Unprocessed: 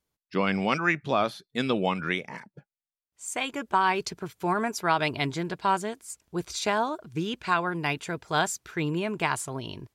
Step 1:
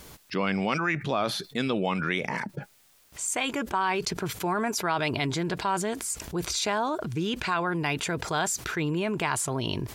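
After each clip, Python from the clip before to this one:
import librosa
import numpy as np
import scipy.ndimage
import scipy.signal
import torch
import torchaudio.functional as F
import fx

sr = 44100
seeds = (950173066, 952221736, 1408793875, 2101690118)

y = fx.env_flatten(x, sr, amount_pct=70)
y = y * librosa.db_to_amplitude(-5.0)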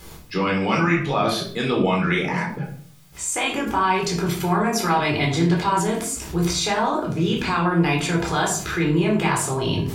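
y = fx.room_shoebox(x, sr, seeds[0], volume_m3=580.0, walls='furnished', distance_m=4.0)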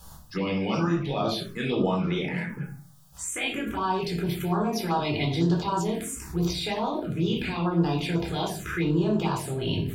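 y = fx.env_phaser(x, sr, low_hz=340.0, high_hz=2200.0, full_db=-15.5)
y = y * librosa.db_to_amplitude(-4.0)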